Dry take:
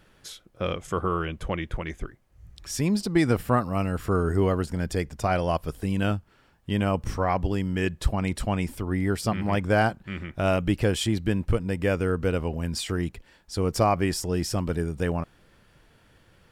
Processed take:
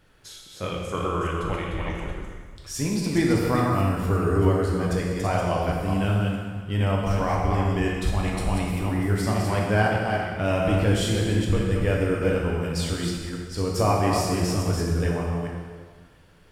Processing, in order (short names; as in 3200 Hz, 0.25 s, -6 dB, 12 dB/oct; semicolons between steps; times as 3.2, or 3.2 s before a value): reverse delay 0.212 s, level -4 dB; plate-style reverb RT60 1.6 s, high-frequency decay 0.95×, DRR -1.5 dB; gain -3.5 dB